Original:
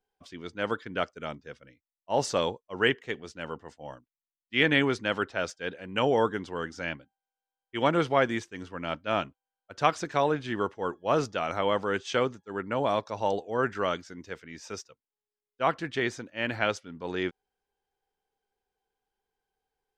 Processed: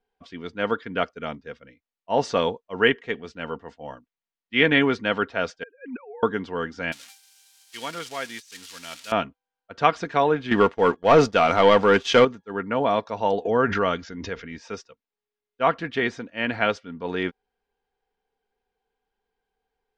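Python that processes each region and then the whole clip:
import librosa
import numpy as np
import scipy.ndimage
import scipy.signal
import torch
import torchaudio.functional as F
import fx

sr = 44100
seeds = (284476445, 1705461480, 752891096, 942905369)

y = fx.chain(x, sr, fx.sine_speech(),
    fx.gate_flip(shuts_db=-29.0, range_db=-24), at=(5.63, 6.23))
y = fx.chain(y, sr, fx.crossing_spikes(level_db=-22.0),
    fx.pre_emphasis(coefficient=0.9),
    fx.over_compress(threshold_db=-32.0, ratio=-0.5), at=(6.92, 9.12))
y = fx.chain(y, sr, fx.leveller(passes=2),
    fx.high_shelf(hz=8500.0, db=11.5), at=(10.51, 12.25))
y = fx.chain(y, sr, fx.brickwall_lowpass(high_hz=7300.0),
    fx.low_shelf(hz=87.0, db=9.5),
    fx.pre_swell(db_per_s=41.0), at=(13.45, 14.58))
y = scipy.signal.sosfilt(scipy.signal.butter(2, 3900.0, 'lowpass', fs=sr, output='sos'), y)
y = y + 0.35 * np.pad(y, (int(4.3 * sr / 1000.0), 0))[:len(y)]
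y = y * 10.0 ** (4.5 / 20.0)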